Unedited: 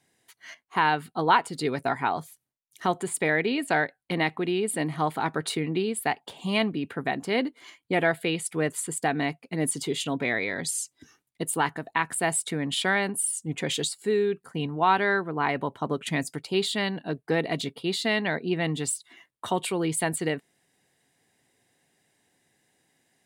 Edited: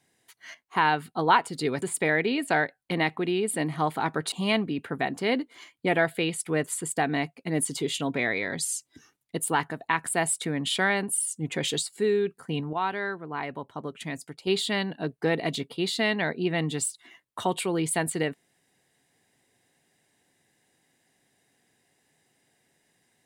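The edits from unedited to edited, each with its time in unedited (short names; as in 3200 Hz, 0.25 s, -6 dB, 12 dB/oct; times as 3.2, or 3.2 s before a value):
1.82–3.02 cut
5.52–6.38 cut
14.79–16.53 gain -7 dB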